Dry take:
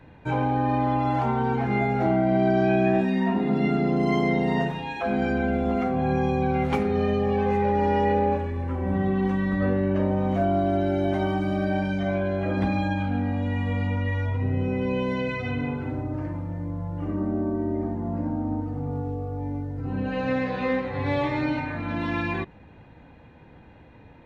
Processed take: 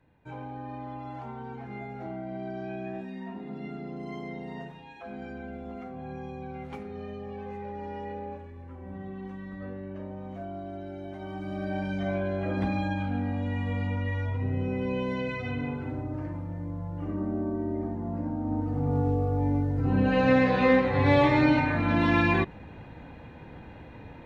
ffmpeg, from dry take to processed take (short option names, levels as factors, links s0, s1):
-af "volume=1.68,afade=t=in:st=11.19:d=0.85:silence=0.266073,afade=t=in:st=18.4:d=0.67:silence=0.375837"